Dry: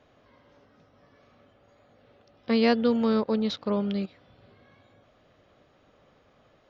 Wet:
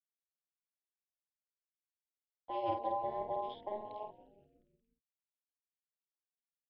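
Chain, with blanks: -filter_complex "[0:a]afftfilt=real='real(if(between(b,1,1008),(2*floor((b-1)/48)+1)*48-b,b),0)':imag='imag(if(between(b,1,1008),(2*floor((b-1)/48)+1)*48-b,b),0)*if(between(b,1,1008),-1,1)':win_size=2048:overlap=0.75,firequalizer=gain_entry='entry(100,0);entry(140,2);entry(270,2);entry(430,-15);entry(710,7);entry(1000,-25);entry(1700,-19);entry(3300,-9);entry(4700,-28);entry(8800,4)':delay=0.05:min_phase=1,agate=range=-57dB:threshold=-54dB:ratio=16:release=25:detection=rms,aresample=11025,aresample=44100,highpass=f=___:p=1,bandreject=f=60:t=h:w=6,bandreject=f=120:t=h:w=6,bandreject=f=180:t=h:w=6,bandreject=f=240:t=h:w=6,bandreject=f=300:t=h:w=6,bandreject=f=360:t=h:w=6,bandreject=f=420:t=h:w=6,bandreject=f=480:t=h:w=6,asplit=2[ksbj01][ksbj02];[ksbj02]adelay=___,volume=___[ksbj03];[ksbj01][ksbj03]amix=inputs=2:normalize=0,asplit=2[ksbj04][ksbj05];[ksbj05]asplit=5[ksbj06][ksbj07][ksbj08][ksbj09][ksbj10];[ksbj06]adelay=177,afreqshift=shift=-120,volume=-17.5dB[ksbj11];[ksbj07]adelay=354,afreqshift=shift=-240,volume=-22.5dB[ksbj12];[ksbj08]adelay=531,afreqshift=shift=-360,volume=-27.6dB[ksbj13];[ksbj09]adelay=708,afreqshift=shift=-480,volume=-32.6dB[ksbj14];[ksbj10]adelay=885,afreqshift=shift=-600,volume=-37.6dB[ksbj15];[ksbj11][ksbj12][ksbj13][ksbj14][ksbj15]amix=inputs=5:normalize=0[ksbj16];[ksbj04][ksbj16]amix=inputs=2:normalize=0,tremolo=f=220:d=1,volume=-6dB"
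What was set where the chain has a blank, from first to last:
280, 50, -5dB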